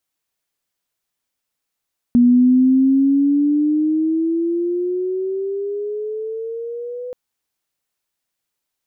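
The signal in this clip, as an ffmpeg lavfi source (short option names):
-f lavfi -i "aevalsrc='pow(10,(-8-18*t/4.98)/20)*sin(2*PI*240*4.98/log(500/240)*(exp(log(500/240)*t/4.98)-1))':d=4.98:s=44100"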